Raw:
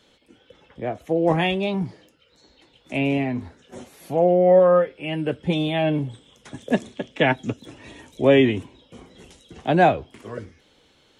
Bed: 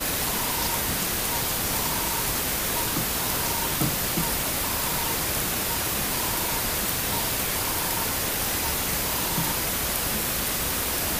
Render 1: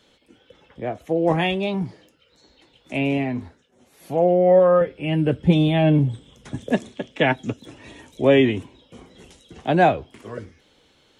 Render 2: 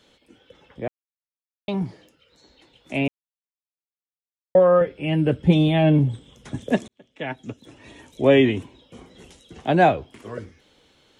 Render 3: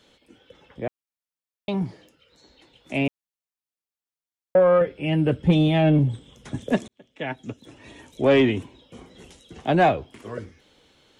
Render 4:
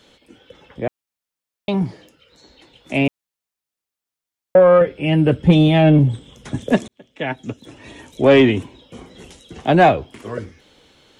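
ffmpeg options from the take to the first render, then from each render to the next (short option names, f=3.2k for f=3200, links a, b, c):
-filter_complex "[0:a]asettb=1/sr,asplit=3[a][b][c];[a]atrim=end=4.814[d];[b]atrim=start=4.81:end=6.7,asetpts=PTS-STARTPTS,afade=t=in:d=0.004:c=qsin,afade=t=out:st=1.886:d=0.004:c=qsin,lowshelf=f=260:g=11.5[e];[c]atrim=start=6.696[f];[d][e]acrossfade=d=0.004:c1=hsin:c2=qsin[g];[g][f]acrossfade=d=0.004:c1=qsin:c2=hsin,asplit=3[h][i][j];[h]atrim=end=3.74,asetpts=PTS-STARTPTS,afade=t=out:st=3.4:d=0.34:silence=0.0794328[k];[i]atrim=start=3.74:end=3.78,asetpts=PTS-STARTPTS,volume=-22dB[l];[j]atrim=start=3.78,asetpts=PTS-STARTPTS,afade=t=in:d=0.34:silence=0.0794328[m];[k][l][m]concat=n=3:v=0:a=1"
-filter_complex "[0:a]asplit=6[a][b][c][d][e][f];[a]atrim=end=0.88,asetpts=PTS-STARTPTS,afade=t=out:st=0.876:d=0.004:c=hsin[g];[b]atrim=start=0.88:end=1.68,asetpts=PTS-STARTPTS,volume=0[h];[c]atrim=start=1.68:end=3.08,asetpts=PTS-STARTPTS,afade=t=in:d=0.004:c=hsin,afade=t=out:st=1.396:d=0.004:c=hsin[i];[d]atrim=start=3.08:end=4.55,asetpts=PTS-STARTPTS,volume=0[j];[e]atrim=start=4.55:end=6.88,asetpts=PTS-STARTPTS,afade=t=in:d=0.004:c=hsin,afade=t=out:st=2.326:d=0.004:c=hsin[k];[f]atrim=start=6.88,asetpts=PTS-STARTPTS,afade=t=in:d=1.4[l];[g][h][i][j][k][l]concat=n=6:v=0:a=1"
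-af "asoftclip=type=tanh:threshold=-9dB"
-af "volume=6dB"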